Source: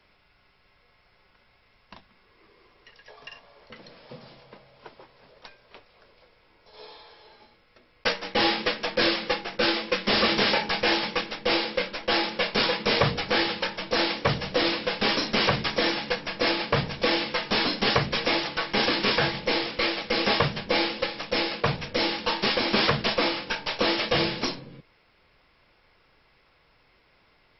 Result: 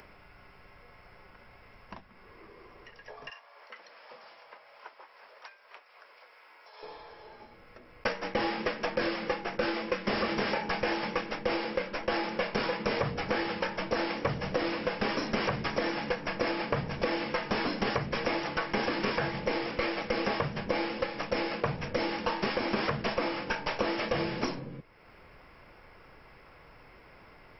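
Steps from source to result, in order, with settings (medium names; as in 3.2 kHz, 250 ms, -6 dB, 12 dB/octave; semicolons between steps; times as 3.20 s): 3.30–6.83 s: high-pass 930 Hz 12 dB/octave; upward compressor, threshold -47 dBFS; peaking EQ 3.9 kHz -13.5 dB 0.92 oct; compression 6:1, threshold -30 dBFS, peak gain reduction 12 dB; trim +3 dB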